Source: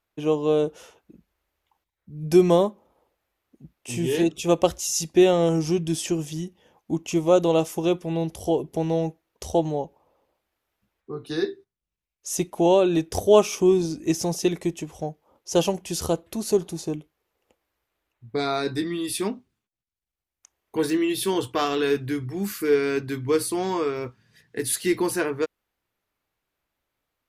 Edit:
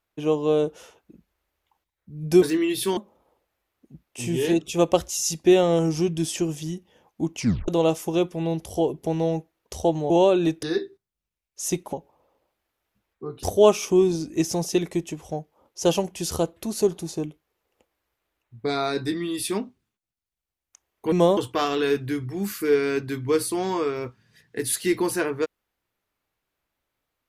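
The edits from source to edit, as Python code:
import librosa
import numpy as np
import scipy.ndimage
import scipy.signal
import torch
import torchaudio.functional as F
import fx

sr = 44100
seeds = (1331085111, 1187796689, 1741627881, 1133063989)

y = fx.edit(x, sr, fx.swap(start_s=2.42, length_s=0.25, other_s=20.82, other_length_s=0.55),
    fx.tape_stop(start_s=7.08, length_s=0.3),
    fx.swap(start_s=9.8, length_s=1.5, other_s=12.6, other_length_s=0.53), tone=tone)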